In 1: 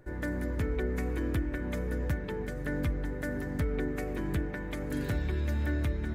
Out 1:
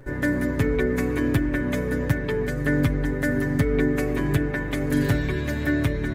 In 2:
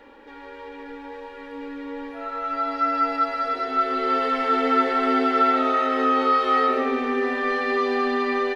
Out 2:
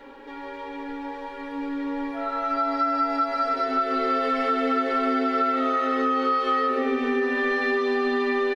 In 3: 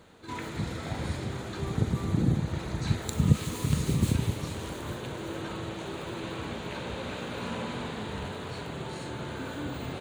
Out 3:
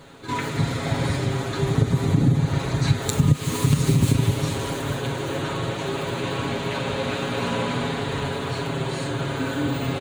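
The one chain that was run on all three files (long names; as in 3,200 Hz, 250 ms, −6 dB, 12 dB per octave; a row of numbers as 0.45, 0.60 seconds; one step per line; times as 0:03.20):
comb filter 7.3 ms, depth 73%
downward compressor 5 to 1, threshold −22 dBFS
loudness normalisation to −24 LKFS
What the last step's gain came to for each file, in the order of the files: +8.5, +1.5, +8.0 decibels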